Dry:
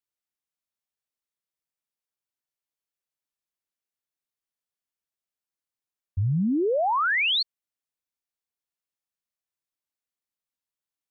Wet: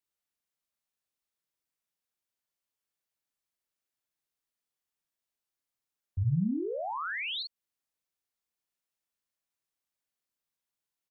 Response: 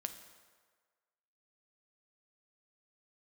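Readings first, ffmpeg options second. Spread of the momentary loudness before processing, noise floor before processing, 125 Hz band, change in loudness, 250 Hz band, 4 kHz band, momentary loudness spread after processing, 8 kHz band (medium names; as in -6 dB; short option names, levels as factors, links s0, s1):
10 LU, under -85 dBFS, -3.5 dB, -9.0 dB, -6.0 dB, -11.5 dB, 9 LU, no reading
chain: -filter_complex "[0:a]alimiter=level_in=1.12:limit=0.0631:level=0:latency=1,volume=0.891,asplit=2[s0][s1];[s1]adelay=43,volume=0.631[s2];[s0][s2]amix=inputs=2:normalize=0,acrossover=split=200[s3][s4];[s4]acompressor=threshold=0.0224:ratio=6[s5];[s3][s5]amix=inputs=2:normalize=0"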